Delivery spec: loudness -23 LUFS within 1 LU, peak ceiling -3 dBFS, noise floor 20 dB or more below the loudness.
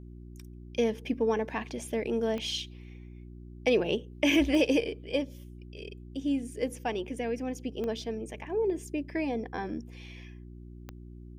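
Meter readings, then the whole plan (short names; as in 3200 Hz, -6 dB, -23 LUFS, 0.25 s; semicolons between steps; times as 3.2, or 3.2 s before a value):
clicks 4; hum 60 Hz; harmonics up to 360 Hz; hum level -44 dBFS; loudness -31.0 LUFS; peak -14.0 dBFS; loudness target -23.0 LUFS
-> de-click; de-hum 60 Hz, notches 6; gain +8 dB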